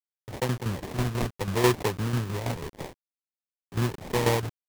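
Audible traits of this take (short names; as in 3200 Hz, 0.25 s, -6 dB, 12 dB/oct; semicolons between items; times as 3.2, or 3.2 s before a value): a quantiser's noise floor 6-bit, dither none; tremolo saw down 6.1 Hz, depth 65%; phasing stages 12, 0.71 Hz, lowest notch 590–1400 Hz; aliases and images of a low sample rate 1400 Hz, jitter 20%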